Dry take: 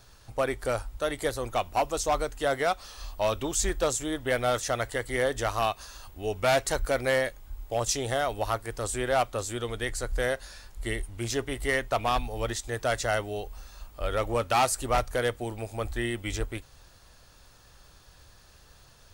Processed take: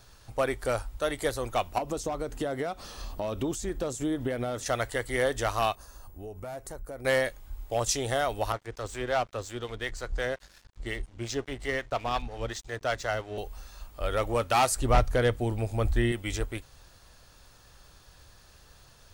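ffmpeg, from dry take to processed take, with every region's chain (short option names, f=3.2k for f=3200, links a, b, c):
-filter_complex "[0:a]asettb=1/sr,asplit=3[a][b][c];[a]atrim=end=1.784[d];[b]atrim=start=1.78:end=4.66,asetpts=PTS-STARTPTS,afade=t=in:d=0.004:c=qsin,afade=t=out:st=2.876:d=0.004:c=qsin,acompressor=threshold=-35dB:ratio=5:attack=3.2:release=140:knee=1:detection=peak,equalizer=f=220:w=0.44:g=12[e];[c]atrim=start=4.656[f];[d][e]acrossfade=d=0.004:c1=hsin:c2=qsin[g];[g][f]acrossfade=d=0.004:c1=qsin:c2=hsin,asettb=1/sr,asplit=3[h][i][j];[h]atrim=end=5.754[k];[i]atrim=start=5.75:end=7.05,asetpts=PTS-STARTPTS,afade=t=in:d=0.004:c=qsin,afade=t=out:st=1.296:d=0.004:c=qsin,equalizer=f=3.2k:t=o:w=2.3:g=-15,acompressor=threshold=-38dB:ratio=4:attack=3.2:release=140:knee=1:detection=peak[l];[j]atrim=start=7.046[m];[k][l]acrossfade=d=0.004:c1=hsin:c2=qsin[n];[n][m]acrossfade=d=0.004:c1=qsin:c2=hsin,asettb=1/sr,asplit=3[o][p][q];[o]atrim=end=8.524[r];[p]atrim=start=8.52:end=13.38,asetpts=PTS-STARTPTS,afade=t=in:d=0.004:c=qsin,afade=t=out:st=4.856:d=0.004:c=qsin,lowpass=f=7.1k:w=0.5412,lowpass=f=7.1k:w=1.3066,acrossover=split=520[s][t];[s]aeval=exprs='val(0)*(1-0.5/2+0.5/2*cos(2*PI*5.6*n/s))':c=same[u];[t]aeval=exprs='val(0)*(1-0.5/2-0.5/2*cos(2*PI*5.6*n/s))':c=same[v];[u][v]amix=inputs=2:normalize=0,aeval=exprs='sgn(val(0))*max(abs(val(0))-0.00376,0)':c=same[w];[q]atrim=start=13.376[x];[r][w]acrossfade=d=0.004:c1=hsin:c2=qsin[y];[y][x]acrossfade=d=0.004:c1=qsin:c2=hsin,asettb=1/sr,asplit=3[z][aa][ab];[z]atrim=end=14.764[ac];[aa]atrim=start=14.76:end=16.12,asetpts=PTS-STARTPTS,afade=t=in:d=0.004:c=qsin,afade=t=out:st=1.356:d=0.004:c=qsin,acrossover=split=6800[ad][ae];[ae]acompressor=threshold=-52dB:ratio=4:attack=1:release=60[af];[ad][af]amix=inputs=2:normalize=0,lowshelf=f=290:g=9.5[ag];[ab]atrim=start=16.116[ah];[ac][ag]acrossfade=d=0.004:c1=hsin:c2=qsin[ai];[ai][ah]acrossfade=d=0.004:c1=qsin:c2=hsin"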